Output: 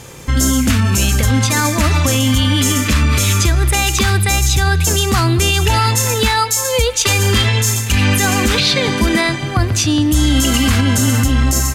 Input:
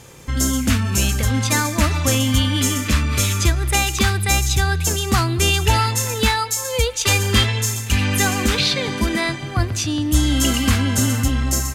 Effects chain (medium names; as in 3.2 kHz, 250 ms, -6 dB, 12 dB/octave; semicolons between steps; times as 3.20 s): peak limiter -12 dBFS, peak gain reduction 8 dB; trim +7.5 dB